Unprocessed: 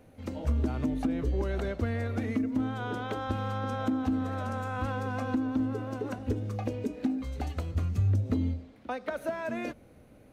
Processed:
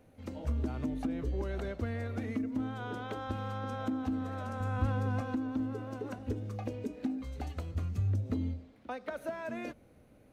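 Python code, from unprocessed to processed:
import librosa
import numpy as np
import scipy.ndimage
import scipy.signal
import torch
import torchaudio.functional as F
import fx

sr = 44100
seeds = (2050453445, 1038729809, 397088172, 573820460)

y = fx.low_shelf(x, sr, hz=250.0, db=10.5, at=(4.6, 5.21))
y = F.gain(torch.from_numpy(y), -5.0).numpy()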